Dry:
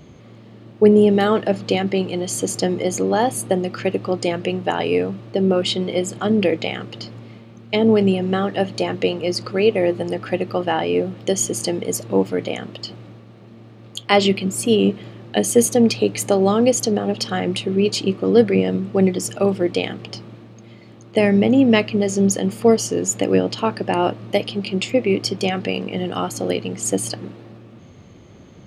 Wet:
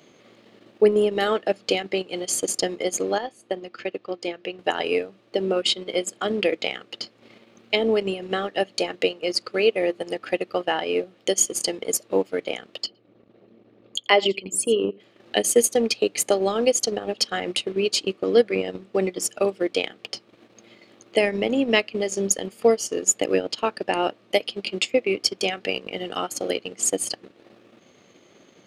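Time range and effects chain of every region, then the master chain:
0:03.18–0:04.59: low-pass filter 5,300 Hz + tuned comb filter 350 Hz, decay 0.23 s, harmonics odd, mix 50%
0:12.86–0:15.00: spectral envelope exaggerated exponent 1.5 + single-tap delay 86 ms −15.5 dB
whole clip: Bessel high-pass filter 500 Hz, order 2; parametric band 950 Hz −5 dB 1.1 octaves; transient designer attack +3 dB, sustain −11 dB

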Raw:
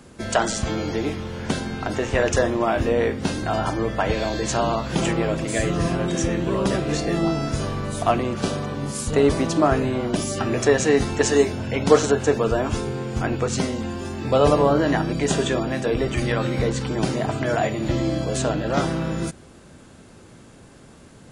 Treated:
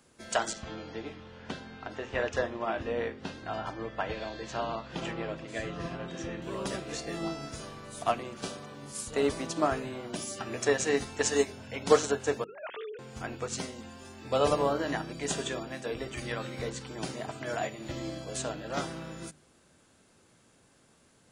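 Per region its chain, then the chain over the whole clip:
0:00.53–0:06.42: low-pass filter 3,700 Hz + notch filter 2,200 Hz, Q 22
0:12.44–0:12.99: three sine waves on the formant tracks + compressor whose output falls as the input rises −28 dBFS
whole clip: spectral tilt +1.5 dB per octave; mains-hum notches 50/100/150/200/250/300/350/400 Hz; expander for the loud parts 1.5 to 1, over −30 dBFS; level −4.5 dB

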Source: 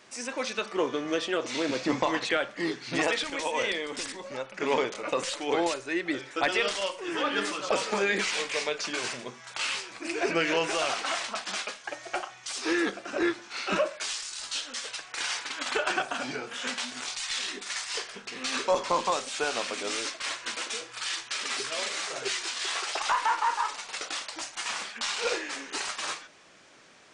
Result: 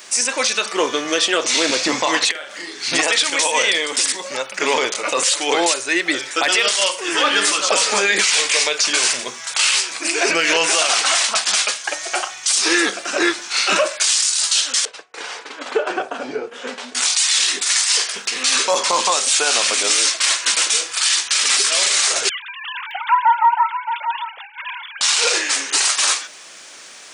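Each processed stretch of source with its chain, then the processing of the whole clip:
0:02.31–0:02.83: high-pass filter 220 Hz 6 dB per octave + downward compressor 5 to 1, threshold −43 dBFS + double-tracking delay 40 ms −3 dB
0:14.85–0:16.95: downward expander −38 dBFS + resonant band-pass 280 Hz, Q 0.59 + parametric band 450 Hz +8 dB 0.47 octaves
0:22.29–0:25.01: three sine waves on the formant tracks + notch filter 360 Hz, Q 7.4 + single-tap delay 620 ms −11 dB
whole clip: RIAA equalisation recording; boost into a limiter +16.5 dB; level −5 dB

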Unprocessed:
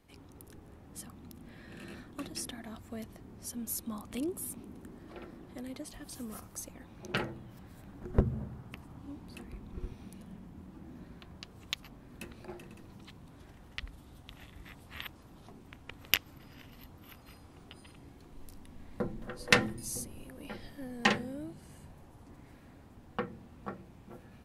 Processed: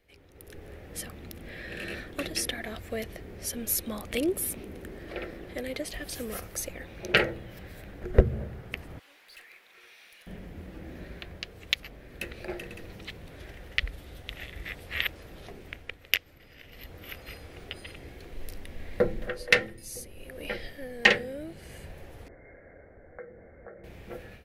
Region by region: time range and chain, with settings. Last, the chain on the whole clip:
0:08.99–0:10.27: high-pass filter 1,400 Hz + tube saturation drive 58 dB, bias 0.25
0:22.28–0:23.84: downward compressor, threshold −47 dBFS + Chebyshev low-pass with heavy ripple 2,200 Hz, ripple 9 dB
whole clip: octave-band graphic EQ 125/250/500/1,000/2,000/8,000 Hz −6/−10/+7/−12/+7/−6 dB; automatic gain control gain up to 13 dB; level −1 dB

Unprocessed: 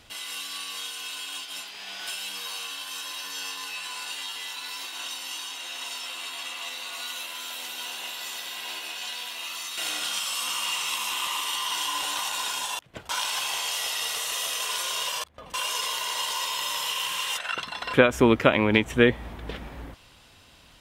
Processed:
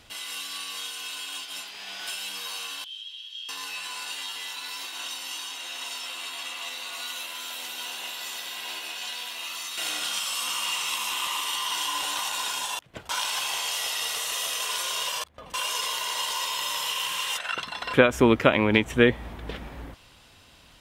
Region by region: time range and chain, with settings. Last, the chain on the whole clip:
0:02.84–0:03.49: resonant band-pass 3,200 Hz, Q 16 + spectral tilt +3 dB per octave
whole clip: no processing

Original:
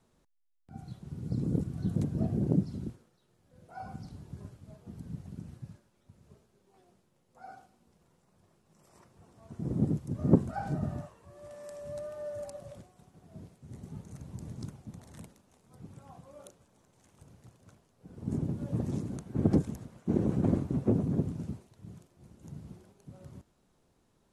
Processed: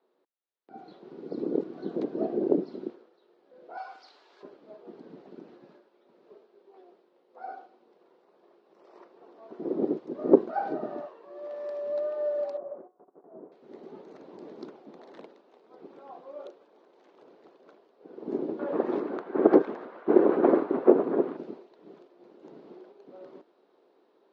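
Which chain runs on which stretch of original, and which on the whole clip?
0:03.77–0:04.43: high-pass filter 1,000 Hz + high-shelf EQ 2,200 Hz +10 dB
0:12.57–0:13.52: low-pass filter 1,300 Hz 24 dB per octave + noise gate −59 dBFS, range −13 dB
0:18.59–0:21.37: low-pass filter 3,300 Hz 6 dB per octave + parametric band 1,400 Hz +12.5 dB 2 octaves
whole clip: elliptic band-pass filter 370–4,300 Hz, stop band 50 dB; tilt shelving filter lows +7.5 dB, about 780 Hz; automatic gain control gain up to 9 dB

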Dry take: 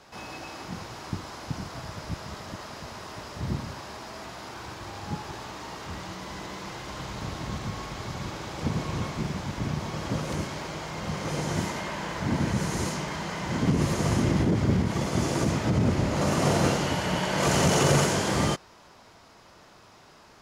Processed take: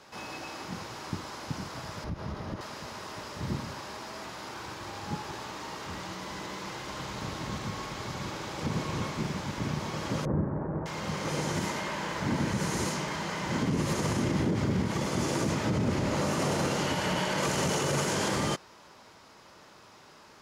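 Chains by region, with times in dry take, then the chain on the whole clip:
0:02.04–0:02.61: spectral tilt −3 dB per octave + notch filter 7,600 Hz, Q 6.1 + downward compressor 5 to 1, threshold −27 dBFS
0:10.25–0:10.86: running median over 25 samples + elliptic low-pass filter 1,800 Hz, stop band 60 dB + low-shelf EQ 370 Hz +11.5 dB
whole clip: low-shelf EQ 83 Hz −10.5 dB; notch filter 700 Hz, Q 12; brickwall limiter −19.5 dBFS

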